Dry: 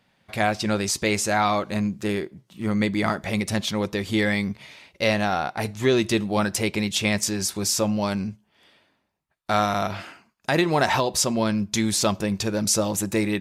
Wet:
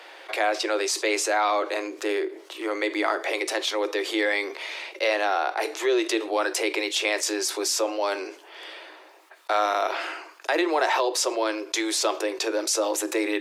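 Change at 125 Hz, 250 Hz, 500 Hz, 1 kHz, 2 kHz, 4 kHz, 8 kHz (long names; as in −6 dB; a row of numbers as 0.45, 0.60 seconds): below −40 dB, −7.0 dB, +0.5 dB, 0.0 dB, +0.5 dB, 0.0 dB, −2.0 dB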